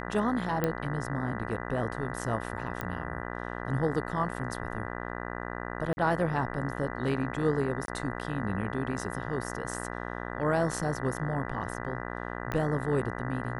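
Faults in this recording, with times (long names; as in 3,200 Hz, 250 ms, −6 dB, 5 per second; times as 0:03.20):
mains buzz 60 Hz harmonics 33 −37 dBFS
0:00.64: click −14 dBFS
0:02.81: click −19 dBFS
0:05.93–0:05.97: drop-out 41 ms
0:07.86–0:07.88: drop-out 22 ms
0:12.52: click −19 dBFS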